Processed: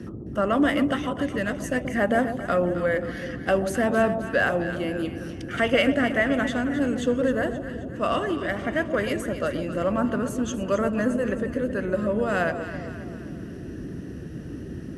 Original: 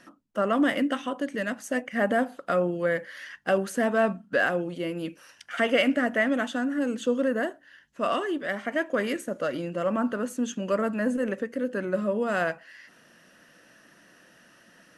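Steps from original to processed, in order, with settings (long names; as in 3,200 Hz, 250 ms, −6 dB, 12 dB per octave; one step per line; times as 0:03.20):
noise in a band 48–350 Hz −38 dBFS
delay that swaps between a low-pass and a high-pass 132 ms, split 880 Hz, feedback 70%, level −8 dB
level +1.5 dB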